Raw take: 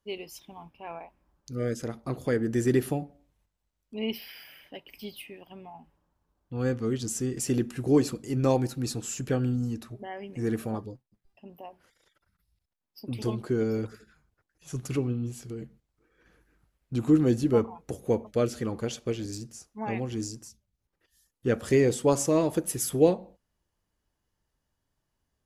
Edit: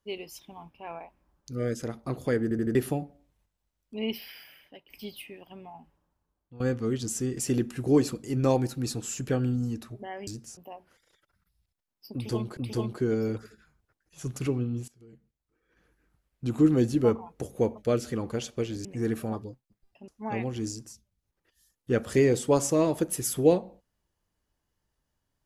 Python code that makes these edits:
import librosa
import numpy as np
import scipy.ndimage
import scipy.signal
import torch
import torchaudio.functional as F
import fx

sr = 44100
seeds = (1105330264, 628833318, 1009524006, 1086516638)

y = fx.edit(x, sr, fx.stutter_over(start_s=2.43, slice_s=0.08, count=4),
    fx.fade_out_to(start_s=4.28, length_s=0.62, floor_db=-10.5),
    fx.fade_out_to(start_s=5.68, length_s=0.92, curve='qsin', floor_db=-16.0),
    fx.swap(start_s=10.27, length_s=1.23, other_s=19.34, other_length_s=0.3),
    fx.repeat(start_s=13.06, length_s=0.44, count=2),
    fx.fade_in_from(start_s=15.37, length_s=1.77, floor_db=-22.0), tone=tone)